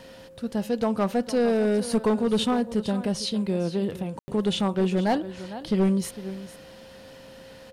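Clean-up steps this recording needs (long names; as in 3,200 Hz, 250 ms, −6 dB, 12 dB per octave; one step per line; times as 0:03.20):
clipped peaks rebuilt −16.5 dBFS
notch filter 530 Hz, Q 30
ambience match 0:04.19–0:04.28
echo removal 455 ms −15 dB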